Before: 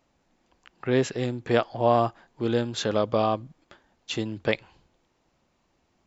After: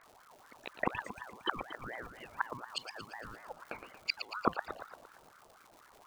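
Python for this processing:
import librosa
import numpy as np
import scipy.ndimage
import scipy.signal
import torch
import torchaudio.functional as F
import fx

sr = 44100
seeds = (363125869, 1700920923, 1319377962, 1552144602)

y = fx.envelope_sharpen(x, sr, power=3.0)
y = fx.gate_flip(y, sr, shuts_db=-25.0, range_db=-32)
y = fx.dmg_crackle(y, sr, seeds[0], per_s=400.0, level_db=-58.0)
y = fx.echo_feedback(y, sr, ms=115, feedback_pct=56, wet_db=-9.0)
y = fx.ring_lfo(y, sr, carrier_hz=990.0, swing_pct=40, hz=4.1)
y = y * 10.0 ** (11.0 / 20.0)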